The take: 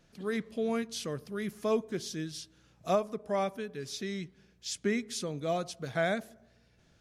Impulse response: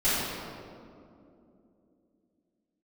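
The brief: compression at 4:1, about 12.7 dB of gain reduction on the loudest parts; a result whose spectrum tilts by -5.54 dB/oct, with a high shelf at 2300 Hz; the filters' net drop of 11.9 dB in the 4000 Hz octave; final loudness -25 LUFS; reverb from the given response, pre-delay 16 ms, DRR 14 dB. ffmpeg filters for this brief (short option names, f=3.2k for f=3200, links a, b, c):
-filter_complex "[0:a]highshelf=f=2.3k:g=-7,equalizer=f=4k:t=o:g=-8.5,acompressor=threshold=-40dB:ratio=4,asplit=2[a][b];[1:a]atrim=start_sample=2205,adelay=16[c];[b][c]afir=irnorm=-1:irlink=0,volume=-28dB[d];[a][d]amix=inputs=2:normalize=0,volume=19dB"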